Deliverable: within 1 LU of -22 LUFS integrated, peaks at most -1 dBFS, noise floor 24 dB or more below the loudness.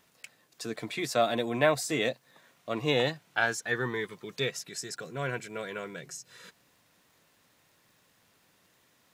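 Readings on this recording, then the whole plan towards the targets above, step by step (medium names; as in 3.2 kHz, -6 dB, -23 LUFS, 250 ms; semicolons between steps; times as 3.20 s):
tick rate 35 per s; loudness -31.0 LUFS; peak level -9.0 dBFS; loudness target -22.0 LUFS
-> de-click; trim +9 dB; peak limiter -1 dBFS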